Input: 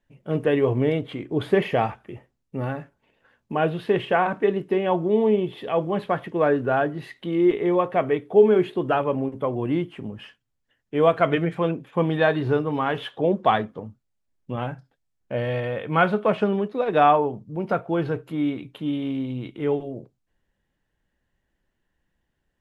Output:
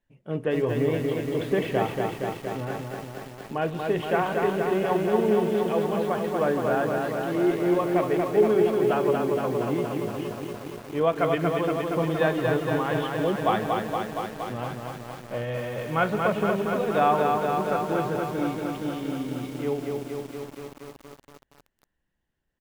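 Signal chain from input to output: delay 162 ms -17 dB; bit-crushed delay 234 ms, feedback 80%, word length 7-bit, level -3.5 dB; trim -5 dB

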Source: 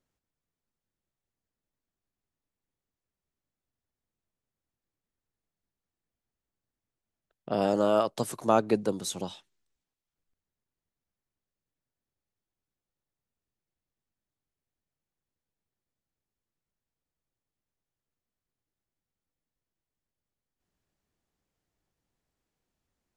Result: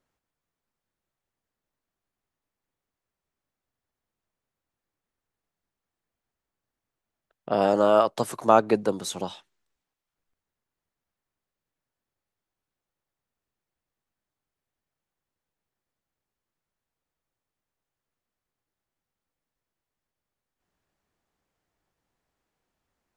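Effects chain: peaking EQ 1.1 kHz +7 dB 2.8 oct

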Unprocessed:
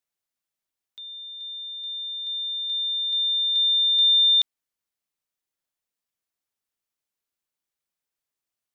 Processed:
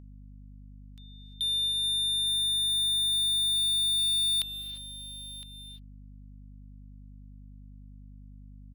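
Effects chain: gate with hold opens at -33 dBFS; peaking EQ 3.5 kHz -6.5 dB 0.37 oct; in parallel at 0 dB: compression, threshold -35 dBFS, peak gain reduction 11.5 dB; on the sum: waveshaping leveller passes 3; saturation -26 dBFS, distortion -13 dB; on a send: delay 1012 ms -16 dB; on the sum: gated-style reverb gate 370 ms rising, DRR 10 dB; hum 50 Hz, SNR 16 dB; tape noise reduction on one side only encoder only

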